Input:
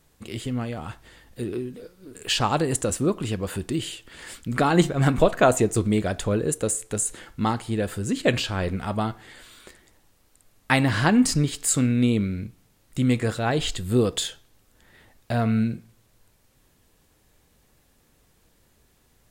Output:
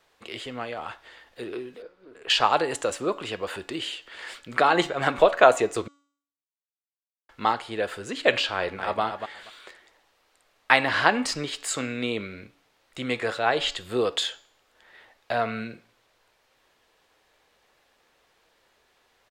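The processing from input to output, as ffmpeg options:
-filter_complex "[0:a]asettb=1/sr,asplit=3[a][b][c];[a]atrim=end=1.824[d];[b]atrim=start=1.82:end=2.3,asetpts=PTS-STARTPTS,afade=t=in:d=0.004:c=qsin,afade=t=out:st=0.476:d=0.004:c=qsin,lowpass=f=1.4k:p=1[e];[c]atrim=start=2.296[f];[d][e]acrossfade=d=0.004:c1=hsin:c2=qsin[g];[g][f]acrossfade=d=0.004:c1=qsin:c2=hsin,asplit=2[h][i];[i]afade=t=in:st=8.54:d=0.01,afade=t=out:st=9.01:d=0.01,aecho=0:1:240|480:0.421697|0.0632545[j];[h][j]amix=inputs=2:normalize=0,asplit=3[k][l][m];[k]atrim=end=5.88,asetpts=PTS-STARTPTS,afade=t=out:st=5.876:d=0.004:c=hsin[n];[l]atrim=start=5.88:end=7.29,asetpts=PTS-STARTPTS,volume=0[o];[m]atrim=start=7.29,asetpts=PTS-STARTPTS,afade=t=in:d=0.004:c=hsin[p];[n][o][p]concat=n=3:v=0:a=1,acrossover=split=430 5000:gain=0.0891 1 0.158[q][r][s];[q][r][s]amix=inputs=3:normalize=0,bandreject=f=284.1:t=h:w=4,bandreject=f=568.2:t=h:w=4,bandreject=f=852.3:t=h:w=4,bandreject=f=1.1364k:t=h:w=4,bandreject=f=1.4205k:t=h:w=4,bandreject=f=1.7046k:t=h:w=4,bandreject=f=1.9887k:t=h:w=4,bandreject=f=2.2728k:t=h:w=4,bandreject=f=2.5569k:t=h:w=4,bandreject=f=2.841k:t=h:w=4,bandreject=f=3.1251k:t=h:w=4,bandreject=f=3.4092k:t=h:w=4,bandreject=f=3.6933k:t=h:w=4,bandreject=f=3.9774k:t=h:w=4,bandreject=f=4.2615k:t=h:w=4,bandreject=f=4.5456k:t=h:w=4,bandreject=f=4.8297k:t=h:w=4,bandreject=f=5.1138k:t=h:w=4,bandreject=f=5.3979k:t=h:w=4,bandreject=f=5.682k:t=h:w=4,bandreject=f=5.9661k:t=h:w=4,bandreject=f=6.2502k:t=h:w=4,bandreject=f=6.5343k:t=h:w=4,bandreject=f=6.8184k:t=h:w=4,bandreject=f=7.1025k:t=h:w=4,bandreject=f=7.3866k:t=h:w=4,bandreject=f=7.6707k:t=h:w=4,bandreject=f=7.9548k:t=h:w=4,volume=4dB"

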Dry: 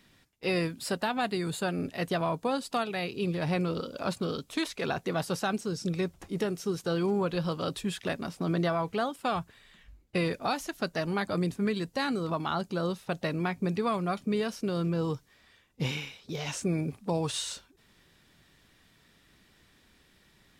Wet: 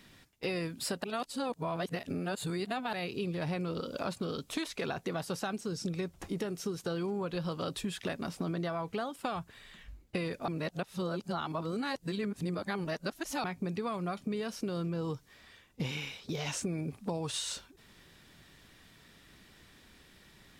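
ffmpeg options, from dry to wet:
-filter_complex "[0:a]asplit=5[a][b][c][d][e];[a]atrim=end=1.042[f];[b]atrim=start=1.038:end=2.932,asetpts=PTS-STARTPTS,areverse[g];[c]atrim=start=2.928:end=10.482[h];[d]atrim=start=10.478:end=13.442,asetpts=PTS-STARTPTS,areverse[i];[e]atrim=start=13.438[j];[f][g]acrossfade=d=0.004:c1=hsin:c2=hsin[k];[k][h]acrossfade=d=0.004:c1=hsin:c2=hsin[l];[l][i]acrossfade=d=0.004:c1=hsin:c2=hsin[m];[m][j]acrossfade=d=0.004:c1=hsin:c2=hsin,acompressor=threshold=-37dB:ratio=5,volume=4dB"

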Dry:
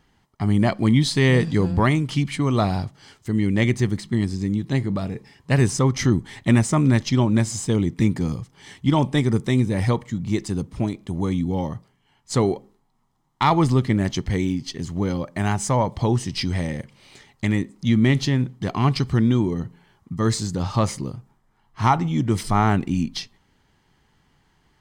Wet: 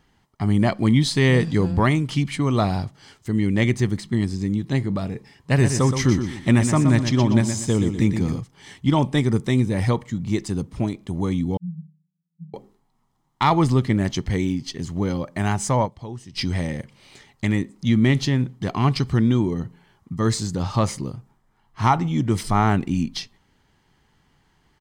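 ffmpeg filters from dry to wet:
-filter_complex "[0:a]asplit=3[a][b][c];[a]afade=t=out:st=5.57:d=0.02[d];[b]aecho=1:1:121|242|363|484:0.398|0.131|0.0434|0.0143,afade=t=in:st=5.57:d=0.02,afade=t=out:st=8.39:d=0.02[e];[c]afade=t=in:st=8.39:d=0.02[f];[d][e][f]amix=inputs=3:normalize=0,asettb=1/sr,asplit=3[g][h][i];[g]atrim=end=11.574[j];[h]atrim=start=11.57:end=12.54,asetpts=PTS-STARTPTS,afade=t=in:d=0.004:c=qsin,afade=t=out:st=0.966:d=0.004:c=qsin,asuperpass=centerf=170:order=20:qfactor=4.9[k];[i]atrim=start=12.536[l];[j][k]acrossfade=d=0.004:c1=hsin:c2=qsin[m];[m][l]acrossfade=d=0.004:c1=qsin:c2=hsin,asplit=3[n][o][p];[n]atrim=end=16.11,asetpts=PTS-STARTPTS,afade=t=out:st=15.85:d=0.26:c=exp:silence=0.199526[q];[o]atrim=start=16.11:end=16.13,asetpts=PTS-STARTPTS,volume=-14dB[r];[p]atrim=start=16.13,asetpts=PTS-STARTPTS,afade=t=in:d=0.26:c=exp:silence=0.199526[s];[q][r][s]concat=n=3:v=0:a=1"

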